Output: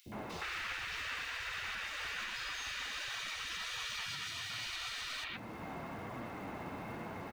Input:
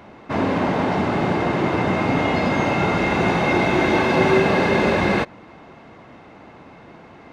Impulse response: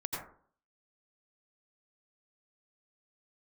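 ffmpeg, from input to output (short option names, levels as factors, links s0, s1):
-filter_complex "[0:a]asettb=1/sr,asplit=3[s0][s1][s2];[s0]atrim=end=4.004[s3];[s1]atrim=start=4:end=4.59,asetpts=PTS-STARTPTS,afade=t=in:d=0.004:c=qsin,afade=t=out:st=0.586:d=0.004:c=qsin,highpass=300[s4];[s2]atrim=start=4.586[s5];[s3][s4]acrossfade=d=0.004:c1=hsin:c2=qsin[s6];[s6][s5]acrossfade=d=0.004:c1=qsin:c2=hsin,afftfilt=real='re*lt(hypot(re,im),0.0794)':imag='im*lt(hypot(re,im),0.0794)':win_size=1024:overlap=0.75,acontrast=30,alimiter=level_in=1.12:limit=0.0631:level=0:latency=1:release=370,volume=0.891,flanger=delay=8.1:depth=4.2:regen=71:speed=1.3:shape=triangular,acrusher=bits=6:mode=log:mix=0:aa=0.000001,acrossover=split=420|3500[s7][s8][s9];[s7]adelay=60[s10];[s8]adelay=120[s11];[s10][s11][s9]amix=inputs=3:normalize=0"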